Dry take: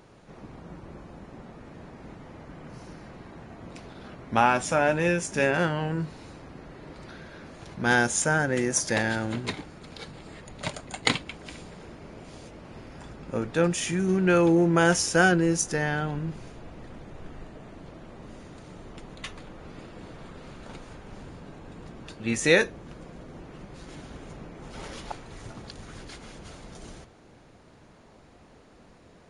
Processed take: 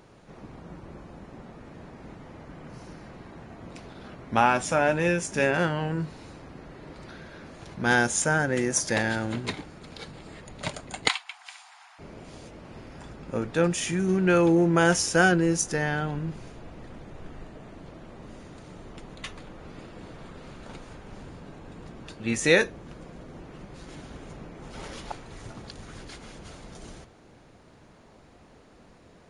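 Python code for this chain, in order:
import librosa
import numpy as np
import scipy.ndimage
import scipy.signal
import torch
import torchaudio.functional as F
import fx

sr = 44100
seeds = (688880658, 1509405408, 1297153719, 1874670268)

y = fx.steep_highpass(x, sr, hz=720.0, slope=96, at=(11.08, 11.99))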